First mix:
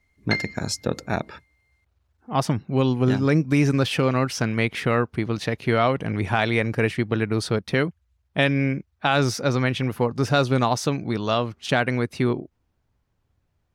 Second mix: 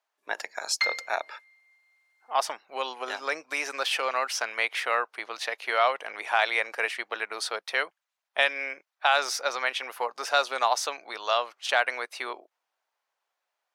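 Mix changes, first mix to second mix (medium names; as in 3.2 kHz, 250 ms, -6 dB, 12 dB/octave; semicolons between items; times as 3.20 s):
background: entry +0.50 s; master: add high-pass 640 Hz 24 dB/octave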